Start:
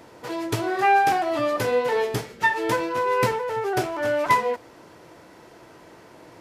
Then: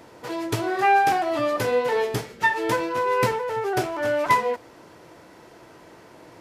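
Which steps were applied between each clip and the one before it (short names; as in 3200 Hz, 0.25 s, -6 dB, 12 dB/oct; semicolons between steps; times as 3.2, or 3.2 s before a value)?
nothing audible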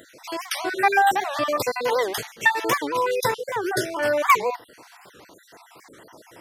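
random spectral dropouts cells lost 47%; tilt +2 dB/oct; record warp 78 rpm, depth 250 cents; gain +3 dB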